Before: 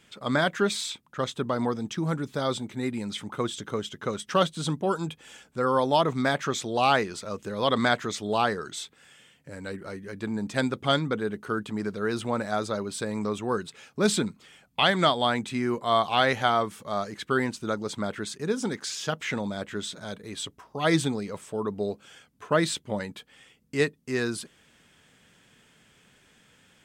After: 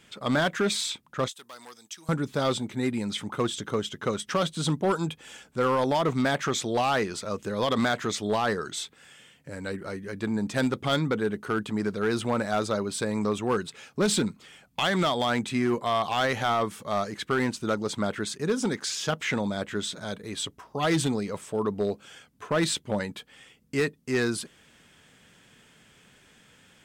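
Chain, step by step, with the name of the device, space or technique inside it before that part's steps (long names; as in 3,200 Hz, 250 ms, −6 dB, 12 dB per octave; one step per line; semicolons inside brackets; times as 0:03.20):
limiter into clipper (brickwall limiter −16 dBFS, peak gain reduction 6.5 dB; hard clipping −21 dBFS, distortion −17 dB)
0:01.28–0:02.09: first difference
level +2.5 dB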